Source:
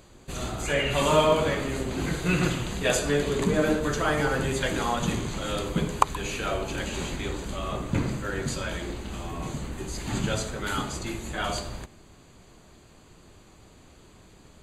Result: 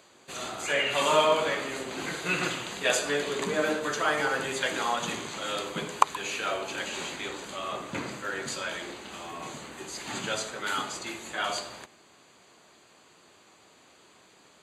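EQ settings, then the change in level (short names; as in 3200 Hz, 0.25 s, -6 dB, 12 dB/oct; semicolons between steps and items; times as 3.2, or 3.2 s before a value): weighting filter A; 0.0 dB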